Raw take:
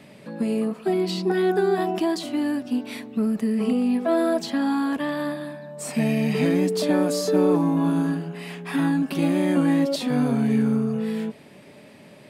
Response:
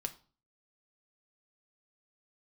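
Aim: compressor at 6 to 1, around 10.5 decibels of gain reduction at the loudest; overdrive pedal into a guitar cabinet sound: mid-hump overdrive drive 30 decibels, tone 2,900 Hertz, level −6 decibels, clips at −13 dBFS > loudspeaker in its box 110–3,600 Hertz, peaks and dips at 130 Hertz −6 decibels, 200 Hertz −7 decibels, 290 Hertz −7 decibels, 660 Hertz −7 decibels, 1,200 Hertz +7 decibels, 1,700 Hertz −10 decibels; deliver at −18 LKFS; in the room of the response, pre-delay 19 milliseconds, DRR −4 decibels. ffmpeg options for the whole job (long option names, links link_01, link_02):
-filter_complex "[0:a]acompressor=threshold=-28dB:ratio=6,asplit=2[link_01][link_02];[1:a]atrim=start_sample=2205,adelay=19[link_03];[link_02][link_03]afir=irnorm=-1:irlink=0,volume=4.5dB[link_04];[link_01][link_04]amix=inputs=2:normalize=0,asplit=2[link_05][link_06];[link_06]highpass=frequency=720:poles=1,volume=30dB,asoftclip=type=tanh:threshold=-13dB[link_07];[link_05][link_07]amix=inputs=2:normalize=0,lowpass=frequency=2900:poles=1,volume=-6dB,highpass=110,equalizer=frequency=130:width_type=q:width=4:gain=-6,equalizer=frequency=200:width_type=q:width=4:gain=-7,equalizer=frequency=290:width_type=q:width=4:gain=-7,equalizer=frequency=660:width_type=q:width=4:gain=-7,equalizer=frequency=1200:width_type=q:width=4:gain=7,equalizer=frequency=1700:width_type=q:width=4:gain=-10,lowpass=frequency=3600:width=0.5412,lowpass=frequency=3600:width=1.3066,volume=5dB"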